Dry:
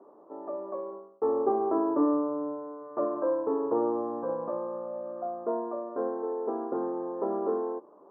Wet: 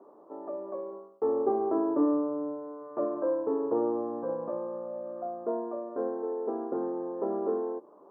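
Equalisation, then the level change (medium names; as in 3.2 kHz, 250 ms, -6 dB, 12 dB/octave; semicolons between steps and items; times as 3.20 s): dynamic bell 1.1 kHz, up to -5 dB, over -46 dBFS, Q 1.4; 0.0 dB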